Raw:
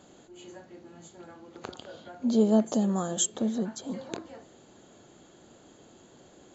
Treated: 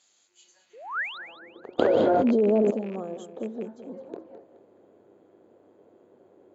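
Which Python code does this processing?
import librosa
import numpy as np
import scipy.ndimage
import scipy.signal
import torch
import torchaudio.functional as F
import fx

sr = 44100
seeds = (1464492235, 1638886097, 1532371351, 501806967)

p1 = fx.rattle_buzz(x, sr, strikes_db=-29.0, level_db=-19.0)
p2 = fx.spec_paint(p1, sr, seeds[0], shape='rise', start_s=0.73, length_s=0.45, low_hz=400.0, high_hz=4200.0, level_db=-28.0)
p3 = fx.dmg_buzz(p2, sr, base_hz=100.0, harmonics=27, level_db=-60.0, tilt_db=-4, odd_only=False)
p4 = fx.filter_sweep_bandpass(p3, sr, from_hz=5400.0, to_hz=450.0, start_s=0.54, end_s=1.47, q=1.8)
p5 = p4 + fx.echo_feedback(p4, sr, ms=212, feedback_pct=36, wet_db=-12, dry=0)
p6 = fx.env_flatten(p5, sr, amount_pct=100, at=(1.78, 2.7), fade=0.02)
y = p6 * 10.0 ** (1.5 / 20.0)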